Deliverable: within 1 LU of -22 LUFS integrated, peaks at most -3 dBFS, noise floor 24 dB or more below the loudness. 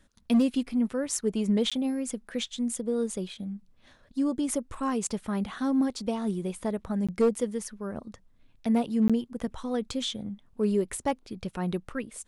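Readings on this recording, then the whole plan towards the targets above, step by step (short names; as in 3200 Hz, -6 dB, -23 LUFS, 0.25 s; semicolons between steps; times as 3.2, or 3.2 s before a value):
clipped 0.3%; flat tops at -17.0 dBFS; dropouts 3; longest dropout 16 ms; loudness -29.5 LUFS; peak -17.0 dBFS; loudness target -22.0 LUFS
-> clip repair -17 dBFS; interpolate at 1.7/7.07/9.08, 16 ms; gain +7.5 dB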